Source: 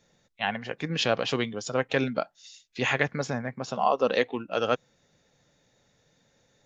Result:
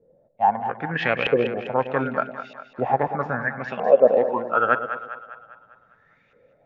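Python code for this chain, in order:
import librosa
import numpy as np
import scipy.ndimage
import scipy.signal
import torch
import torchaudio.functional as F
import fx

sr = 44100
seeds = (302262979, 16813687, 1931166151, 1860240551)

y = fx.filter_lfo_lowpass(x, sr, shape='saw_up', hz=0.79, low_hz=450.0, high_hz=2600.0, q=7.7)
y = fx.echo_split(y, sr, split_hz=650.0, low_ms=110, high_ms=200, feedback_pct=52, wet_db=-9.5)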